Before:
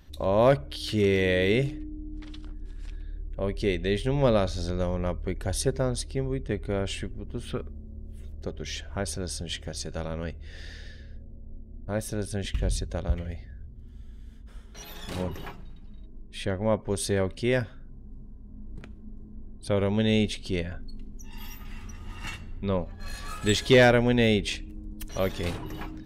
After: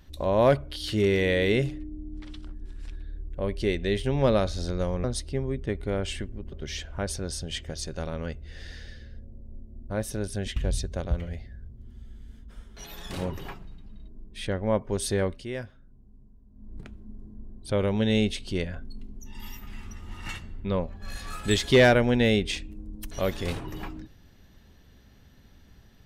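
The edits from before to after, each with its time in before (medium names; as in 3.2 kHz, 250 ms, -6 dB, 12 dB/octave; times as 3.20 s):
5.04–5.86 s: delete
7.34–8.50 s: delete
17.24–18.73 s: dip -9.5 dB, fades 0.21 s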